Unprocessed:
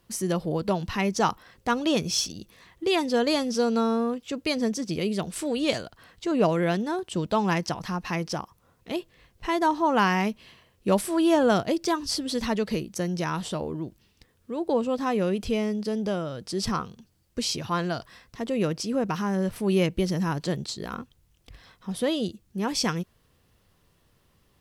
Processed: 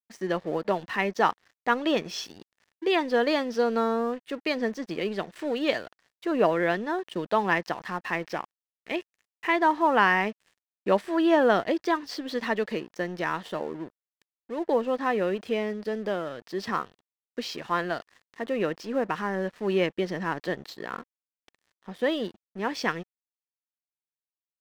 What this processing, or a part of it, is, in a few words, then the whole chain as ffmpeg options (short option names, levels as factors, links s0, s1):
pocket radio on a weak battery: -filter_complex "[0:a]asettb=1/sr,asplit=3[s0][s1][s2];[s0]atrim=end=8.234[s3];[s1]atrim=start=8.23:end=9.56,asetpts=PTS-STARTPTS,afade=t=in:d=0.004:c=qsin,afade=t=out:st=1.326:d=0.004:c=qsin,equalizer=f=2300:t=o:w=0.39:g=10[s4];[s2]atrim=start=9.556[s5];[s3][s4]acrossfade=d=0.004:c1=hsin:c2=qsin[s6];[s6][s5]acrossfade=d=0.004:c1=qsin:c2=hsin,highpass=300,lowpass=3100,aeval=exprs='sgn(val(0))*max(abs(val(0))-0.00355,0)':c=same,equalizer=f=1800:t=o:w=0.23:g=8,volume=1.19"